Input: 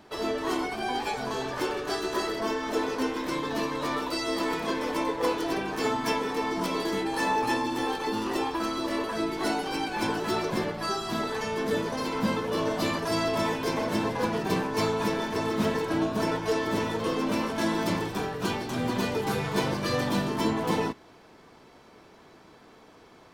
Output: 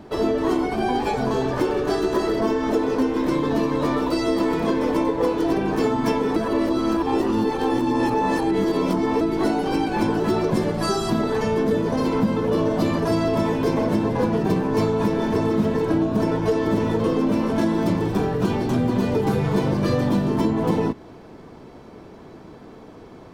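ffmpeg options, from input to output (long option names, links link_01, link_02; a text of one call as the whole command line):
ffmpeg -i in.wav -filter_complex "[0:a]asettb=1/sr,asplit=3[link_01][link_02][link_03];[link_01]atrim=end=10.544[link_04];[link_02]atrim=start=10.54:end=11.1,asetpts=PTS-STARTPTS,afade=type=in:duration=0.004:curve=qsin,afade=type=out:start_time=0.556:duration=0.004:curve=qsin,equalizer=frequency=8900:width_type=o:width=1.7:gain=9.5[link_05];[link_03]atrim=start=11.096[link_06];[link_04][link_05]acrossfade=duration=0.004:curve1=hsin:curve2=qsin[link_07];[link_07][link_06]acrossfade=duration=0.004:curve1=qsin:curve2=hsin,asplit=3[link_08][link_09][link_10];[link_08]atrim=end=6.362[link_11];[link_09]atrim=start=6.358:end=9.212,asetpts=PTS-STARTPTS,areverse[link_12];[link_10]atrim=start=9.208[link_13];[link_11][link_12]acrossfade=duration=0.004:curve1=hsin:curve2=hsin[link_14];[link_14][link_13]acrossfade=duration=0.004:curve1=hsin:curve2=hsin,tiltshelf=frequency=760:gain=7,acompressor=threshold=-25dB:ratio=6,volume=8dB" out.wav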